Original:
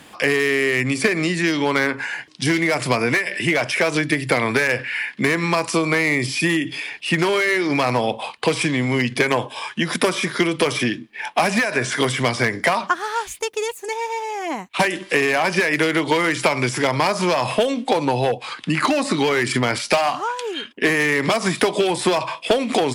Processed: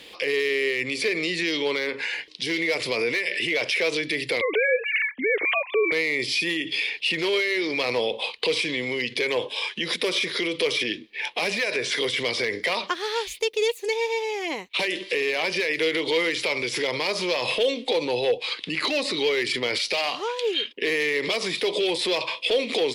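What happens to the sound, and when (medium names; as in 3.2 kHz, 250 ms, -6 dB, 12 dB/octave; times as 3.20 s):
4.41–5.92 s: formants replaced by sine waves
whole clip: high-order bell 1 kHz -12.5 dB; peak limiter -18 dBFS; graphic EQ 125/250/500/1000/2000/4000/8000 Hz -11/-6/+9/+5/+3/+10/-6 dB; trim -2.5 dB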